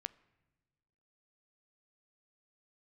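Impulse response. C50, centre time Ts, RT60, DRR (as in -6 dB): 20.5 dB, 2 ms, no single decay rate, 17.0 dB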